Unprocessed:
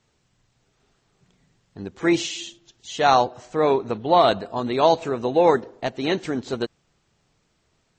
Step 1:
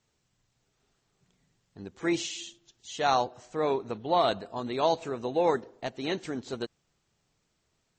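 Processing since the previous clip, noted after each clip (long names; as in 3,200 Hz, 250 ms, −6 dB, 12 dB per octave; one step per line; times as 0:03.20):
high-shelf EQ 5,600 Hz +6 dB
level −8.5 dB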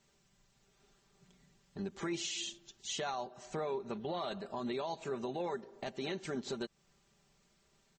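comb filter 5.1 ms, depth 64%
downward compressor 3 to 1, threshold −38 dBFS, peak gain reduction 15 dB
brickwall limiter −31.5 dBFS, peak gain reduction 7.5 dB
level +2.5 dB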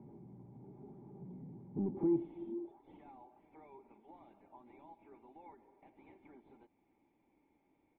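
high-pass filter sweep 110 Hz → 2,500 Hz, 0:02.38–0:02.97
power curve on the samples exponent 0.5
formant resonators in series u
level +7 dB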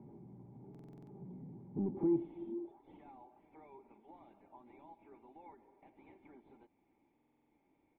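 buffer that repeats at 0:00.70/0:07.14, samples 2,048, times 7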